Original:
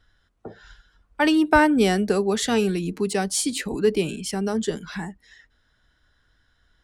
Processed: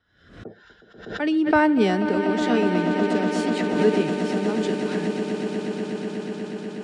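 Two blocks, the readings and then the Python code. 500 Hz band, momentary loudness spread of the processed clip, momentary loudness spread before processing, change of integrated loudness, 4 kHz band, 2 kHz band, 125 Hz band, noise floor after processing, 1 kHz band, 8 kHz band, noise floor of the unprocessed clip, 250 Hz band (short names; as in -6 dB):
+1.0 dB, 11 LU, 12 LU, -0.5 dB, -4.0 dB, -1.0 dB, +1.0 dB, -55 dBFS, -0.5 dB, -13.0 dB, -66 dBFS, +2.0 dB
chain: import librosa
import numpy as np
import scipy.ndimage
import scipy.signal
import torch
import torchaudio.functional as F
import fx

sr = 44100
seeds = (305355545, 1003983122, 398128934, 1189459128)

y = scipy.signal.sosfilt(scipy.signal.butter(2, 120.0, 'highpass', fs=sr, output='sos'), x)
y = fx.high_shelf(y, sr, hz=6400.0, db=-11.5)
y = fx.rotary(y, sr, hz=1.0)
y = fx.air_absorb(y, sr, metres=57.0)
y = fx.echo_swell(y, sr, ms=122, loudest=8, wet_db=-12.5)
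y = fx.pre_swell(y, sr, db_per_s=88.0)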